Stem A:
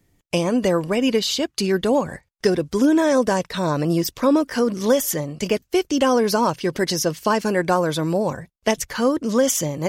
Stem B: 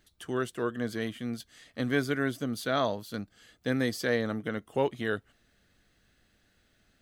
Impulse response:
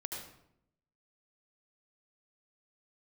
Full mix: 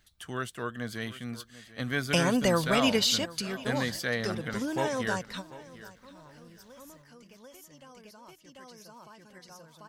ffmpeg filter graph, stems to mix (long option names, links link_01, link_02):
-filter_complex "[0:a]adelay=1800,volume=-0.5dB,afade=type=out:start_time=2.98:duration=0.47:silence=0.354813,asplit=2[link_01][link_02];[link_02]volume=-19.5dB[link_03];[1:a]volume=1.5dB,asplit=3[link_04][link_05][link_06];[link_05]volume=-17dB[link_07];[link_06]apad=whole_len=515507[link_08];[link_01][link_08]sidechaingate=range=-21dB:threshold=-58dB:ratio=16:detection=peak[link_09];[link_03][link_07]amix=inputs=2:normalize=0,aecho=0:1:742|1484|2226|2968:1|0.23|0.0529|0.0122[link_10];[link_09][link_04][link_10]amix=inputs=3:normalize=0,equalizer=frequency=360:width_type=o:width=1.5:gain=-9.5"